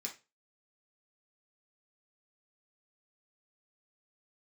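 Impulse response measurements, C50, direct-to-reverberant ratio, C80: 11.5 dB, -1.0 dB, 19.0 dB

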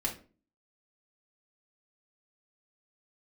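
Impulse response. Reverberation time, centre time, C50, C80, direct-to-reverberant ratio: 0.40 s, 16 ms, 10.5 dB, 16.5 dB, -2.0 dB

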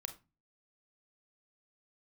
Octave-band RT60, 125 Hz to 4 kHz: 0.50 s, 0.45 s, 0.25 s, 0.30 s, 0.25 s, 0.20 s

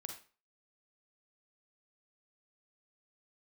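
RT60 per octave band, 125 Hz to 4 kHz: 0.35 s, 0.35 s, 0.35 s, 0.40 s, 0.35 s, 0.35 s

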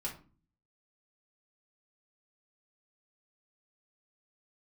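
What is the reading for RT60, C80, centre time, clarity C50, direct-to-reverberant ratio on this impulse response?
0.40 s, 16.0 dB, 18 ms, 9.5 dB, -4.0 dB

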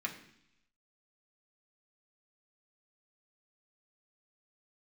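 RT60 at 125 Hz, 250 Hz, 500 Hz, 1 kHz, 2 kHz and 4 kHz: 0.90 s, 0.90 s, 0.70 s, 0.75 s, 0.90 s, 1.0 s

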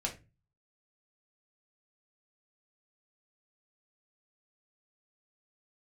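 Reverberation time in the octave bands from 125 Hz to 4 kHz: 0.60 s, 0.45 s, 0.30 s, 0.25 s, 0.25 s, 0.20 s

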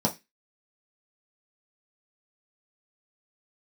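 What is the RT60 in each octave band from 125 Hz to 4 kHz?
0.25 s, 0.25 s, 0.20 s, 0.20 s, 0.25 s, 0.25 s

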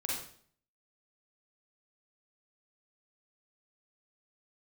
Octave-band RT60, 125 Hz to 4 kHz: 0.70 s, 0.65 s, 0.55 s, 0.50 s, 0.50 s, 0.50 s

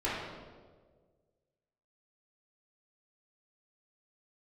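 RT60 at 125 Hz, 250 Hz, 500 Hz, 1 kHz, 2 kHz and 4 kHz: 1.9 s, 1.7 s, 1.9 s, 1.3 s, 1.0 s, 1.0 s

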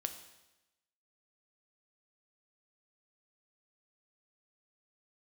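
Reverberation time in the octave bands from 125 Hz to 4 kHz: 1.0 s, 1.0 s, 1.0 s, 0.95 s, 1.0 s, 1.0 s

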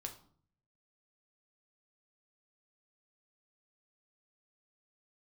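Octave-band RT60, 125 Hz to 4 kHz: 0.95 s, 0.75 s, 0.55 s, 0.50 s, 0.40 s, 0.40 s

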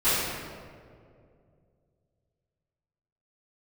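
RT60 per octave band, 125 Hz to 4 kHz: 3.3 s, 2.7 s, 2.7 s, 1.9 s, 1.5 s, 1.1 s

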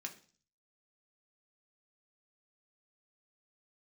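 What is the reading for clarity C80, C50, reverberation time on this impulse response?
18.0 dB, 13.5 dB, 0.40 s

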